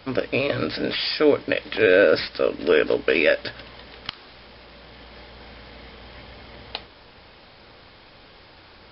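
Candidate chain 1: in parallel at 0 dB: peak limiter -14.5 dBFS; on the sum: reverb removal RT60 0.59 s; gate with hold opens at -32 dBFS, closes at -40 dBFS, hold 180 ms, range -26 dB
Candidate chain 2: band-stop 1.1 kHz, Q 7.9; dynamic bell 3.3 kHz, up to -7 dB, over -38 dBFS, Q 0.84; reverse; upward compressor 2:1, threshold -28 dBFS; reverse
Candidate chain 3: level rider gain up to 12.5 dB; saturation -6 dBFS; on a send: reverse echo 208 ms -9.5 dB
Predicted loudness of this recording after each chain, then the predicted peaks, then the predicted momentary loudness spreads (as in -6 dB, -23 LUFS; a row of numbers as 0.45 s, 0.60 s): -18.5 LUFS, -22.0 LUFS, -19.5 LUFS; -3.0 dBFS, -6.0 dBFS, -4.5 dBFS; 22 LU, 19 LU, 20 LU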